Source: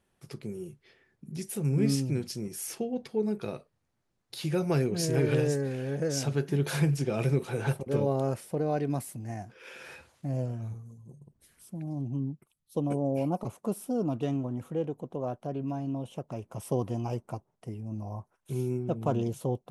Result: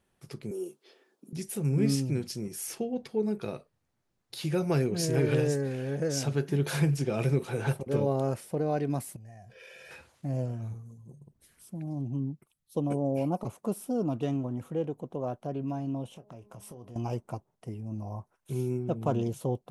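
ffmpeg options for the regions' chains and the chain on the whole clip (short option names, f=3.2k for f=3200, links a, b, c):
-filter_complex "[0:a]asettb=1/sr,asplit=3[a][b][c];[a]atrim=end=0.514[d];[b]atrim=start=0.51:end=1.33,asetpts=PTS-STARTPTS,afade=t=in:d=0.004:c=qsin,afade=t=out:st=0.816:d=0.004:c=qsin,highpass=f=290:w=0.5412,highpass=f=290:w=1.3066,equalizer=f=2k:w=1.9:g=-12.5,acontrast=49[e];[c]atrim=start=1.326[f];[d][e]acrossfade=d=0.004:c1=hsin:c2=qsin[g];[g][f]acrossfade=d=0.004:c1=qsin:c2=hsin,asettb=1/sr,asplit=3[h][i][j];[h]atrim=end=9.164[k];[i]atrim=start=9.16:end=9.91,asetpts=PTS-STARTPTS,afade=t=in:d=0.004:c=qsin,afade=t=out:st=0.746:d=0.004:c=qsin,asuperstop=centerf=1200:order=4:qfactor=3.7,aecho=1:1:1.7:0.78,atrim=end_sample=33075,acompressor=threshold=-46dB:ratio=8:attack=3.2:release=140:knee=1:detection=peak[l];[j]atrim=start=9.906[m];[k][l]acrossfade=d=0.004:c1=hsin:c2=qsin[n];[n][m]acrossfade=d=0.004:c1=qsin:c2=hsin,asettb=1/sr,asplit=3[o][p][q];[o]atrim=end=16.104[r];[p]atrim=start=16.1:end=16.96,asetpts=PTS-STARTPTS,afade=t=in:d=0.004:c=qsin,afade=t=out:st=0.856:d=0.004:c=qsin,bandreject=f=207.3:t=h:w=4,bandreject=f=414.6:t=h:w=4,bandreject=f=621.9:t=h:w=4,bandreject=f=829.2:t=h:w=4,bandreject=f=1.0365k:t=h:w=4,acompressor=threshold=-43dB:ratio=10:attack=3.2:release=140:knee=1:detection=peak,asplit=2[s][t];[t]adelay=25,volume=-11dB[u];[s][u]amix=inputs=2:normalize=0,atrim=end_sample=37926[v];[q]atrim=start=16.956[w];[r][v]acrossfade=d=0.004:c1=hsin:c2=qsin[x];[x][w]acrossfade=d=0.004:c1=qsin:c2=hsin"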